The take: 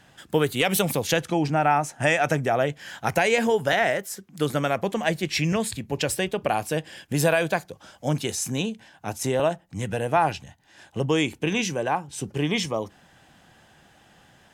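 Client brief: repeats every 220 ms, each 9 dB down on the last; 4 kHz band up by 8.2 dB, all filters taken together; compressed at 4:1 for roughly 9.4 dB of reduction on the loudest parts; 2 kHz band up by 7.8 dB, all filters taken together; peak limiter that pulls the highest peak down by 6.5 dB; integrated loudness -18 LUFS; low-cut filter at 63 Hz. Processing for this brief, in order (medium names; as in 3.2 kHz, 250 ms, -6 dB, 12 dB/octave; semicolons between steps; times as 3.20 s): high-pass 63 Hz; peaking EQ 2 kHz +7.5 dB; peaking EQ 4 kHz +8 dB; compression 4:1, threshold -23 dBFS; peak limiter -14.5 dBFS; feedback delay 220 ms, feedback 35%, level -9 dB; trim +10 dB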